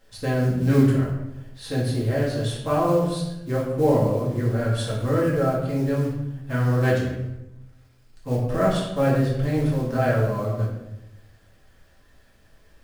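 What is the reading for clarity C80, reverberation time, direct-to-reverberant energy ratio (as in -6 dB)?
6.0 dB, 0.90 s, -6.0 dB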